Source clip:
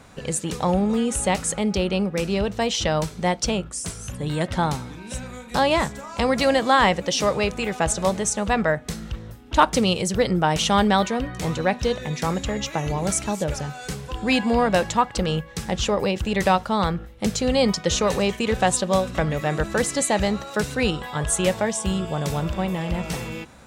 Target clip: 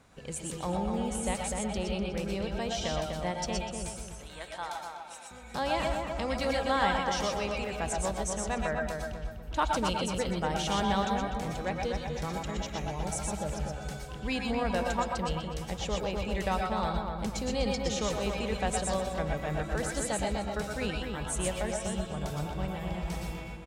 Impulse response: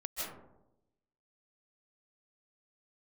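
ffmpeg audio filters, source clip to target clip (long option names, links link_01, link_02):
-filter_complex "[0:a]asettb=1/sr,asplit=3[link_01][link_02][link_03];[link_01]atrim=end=4.084[link_04];[link_02]atrim=start=4.08:end=5.31,asetpts=PTS-STARTPTS,afade=type=in:duration=0.004:curve=qsin,afade=type=out:start_time=1.226:duration=0.004:curve=qsin,highpass=730[link_05];[link_03]atrim=start=5.306[link_06];[link_04][link_05]acrossfade=duration=0.004:curve1=hsin:curve2=qsin[link_07];[link_07][link_06]acrossfade=duration=0.004:curve1=qsin:curve2=hsin,asplit=2[link_08][link_09];[link_09]adelay=248,lowpass=frequency=1900:poles=1,volume=-4dB,asplit=2[link_10][link_11];[link_11]adelay=248,lowpass=frequency=1900:poles=1,volume=0.4,asplit=2[link_12][link_13];[link_13]adelay=248,lowpass=frequency=1900:poles=1,volume=0.4,asplit=2[link_14][link_15];[link_15]adelay=248,lowpass=frequency=1900:poles=1,volume=0.4,asplit=2[link_16][link_17];[link_17]adelay=248,lowpass=frequency=1900:poles=1,volume=0.4[link_18];[link_08][link_10][link_12][link_14][link_16][link_18]amix=inputs=6:normalize=0[link_19];[1:a]atrim=start_sample=2205,afade=type=out:start_time=0.2:duration=0.01,atrim=end_sample=9261,asetrate=52920,aresample=44100[link_20];[link_19][link_20]afir=irnorm=-1:irlink=0,volume=-6.5dB"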